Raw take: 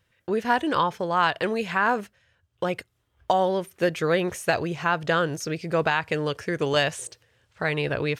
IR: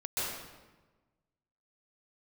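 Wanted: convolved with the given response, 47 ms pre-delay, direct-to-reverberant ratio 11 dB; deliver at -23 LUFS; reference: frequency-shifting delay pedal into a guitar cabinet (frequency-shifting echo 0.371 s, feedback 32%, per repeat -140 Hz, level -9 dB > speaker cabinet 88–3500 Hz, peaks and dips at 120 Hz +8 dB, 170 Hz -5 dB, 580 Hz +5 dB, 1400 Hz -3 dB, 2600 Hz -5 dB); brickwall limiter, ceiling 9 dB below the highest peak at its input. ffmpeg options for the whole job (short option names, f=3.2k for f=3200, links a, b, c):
-filter_complex "[0:a]alimiter=limit=-18dB:level=0:latency=1,asplit=2[a][b];[1:a]atrim=start_sample=2205,adelay=47[c];[b][c]afir=irnorm=-1:irlink=0,volume=-17dB[d];[a][d]amix=inputs=2:normalize=0,asplit=5[e][f][g][h][i];[f]adelay=371,afreqshift=-140,volume=-9dB[j];[g]adelay=742,afreqshift=-280,volume=-18.9dB[k];[h]adelay=1113,afreqshift=-420,volume=-28.8dB[l];[i]adelay=1484,afreqshift=-560,volume=-38.7dB[m];[e][j][k][l][m]amix=inputs=5:normalize=0,highpass=88,equalizer=f=120:t=q:w=4:g=8,equalizer=f=170:t=q:w=4:g=-5,equalizer=f=580:t=q:w=4:g=5,equalizer=f=1.4k:t=q:w=4:g=-3,equalizer=f=2.6k:t=q:w=4:g=-5,lowpass=f=3.5k:w=0.5412,lowpass=f=3.5k:w=1.3066,volume=5dB"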